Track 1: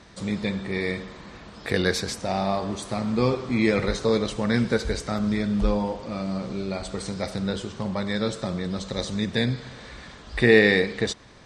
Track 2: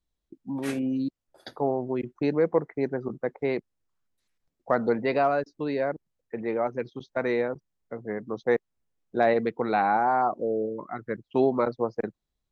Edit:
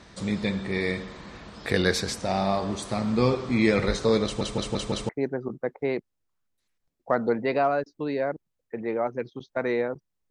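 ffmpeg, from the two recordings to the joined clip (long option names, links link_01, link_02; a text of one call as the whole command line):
ffmpeg -i cue0.wav -i cue1.wav -filter_complex "[0:a]apad=whole_dur=10.3,atrim=end=10.3,asplit=5[link_01][link_02][link_03][link_04][link_05];[link_01]atrim=end=4.412[link_06];[link_02]atrim=start=4.238:end=4.412[link_07];[link_03]atrim=start=4.238:end=4.412[link_08];[link_04]atrim=start=4.238:end=4.412[link_09];[link_05]atrim=start=4.238:end=4.412[link_10];[1:a]atrim=start=2.688:end=7.9[link_11];[link_06][link_07]acrossfade=duration=0.004:curve1=hsin:curve2=hsin[link_12];[link_12][link_08]acrossfade=duration=0.004:curve1=hsin:curve2=hsin[link_13];[link_13][link_09]acrossfade=duration=0.004:curve1=hsin:curve2=hsin[link_14];[link_14][link_10]acrossfade=duration=0.004:curve1=hsin:curve2=hsin[link_15];[link_15][link_11]acrossfade=duration=0.004:curve1=hsin:curve2=hsin" out.wav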